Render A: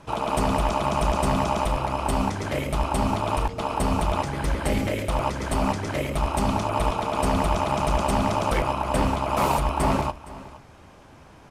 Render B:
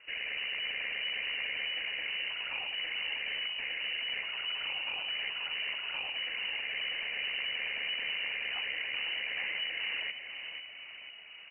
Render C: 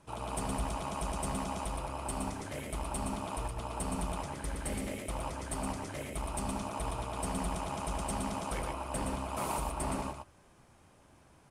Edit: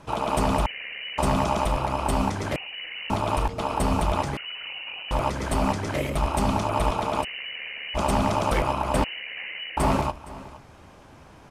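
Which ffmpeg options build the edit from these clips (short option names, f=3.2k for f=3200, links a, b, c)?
-filter_complex "[1:a]asplit=5[a][b][c][d][e];[0:a]asplit=6[f][g][h][i][j][k];[f]atrim=end=0.662[l];[a]atrim=start=0.658:end=1.182[m];[g]atrim=start=1.178:end=2.562[n];[b]atrim=start=2.558:end=3.102[o];[h]atrim=start=3.098:end=4.372[p];[c]atrim=start=4.368:end=5.112[q];[i]atrim=start=5.108:end=7.25[r];[d]atrim=start=7.21:end=7.98[s];[j]atrim=start=7.94:end=9.042[t];[e]atrim=start=9.038:end=9.772[u];[k]atrim=start=9.768[v];[l][m]acrossfade=d=0.004:c1=hsin:c2=hsin[w];[w][n]acrossfade=d=0.004:c1=hsin:c2=hsin[x];[x][o]acrossfade=d=0.004:c1=hsin:c2=hsin[y];[y][p]acrossfade=d=0.004:c1=hsin:c2=hsin[z];[z][q]acrossfade=d=0.004:c1=hsin:c2=hsin[aa];[aa][r]acrossfade=d=0.004:c1=hsin:c2=hsin[ab];[ab][s]acrossfade=d=0.04:c1=tri:c2=tri[ac];[ac][t]acrossfade=d=0.04:c1=tri:c2=tri[ad];[ad][u]acrossfade=d=0.004:c1=hsin:c2=hsin[ae];[ae][v]acrossfade=d=0.004:c1=hsin:c2=hsin"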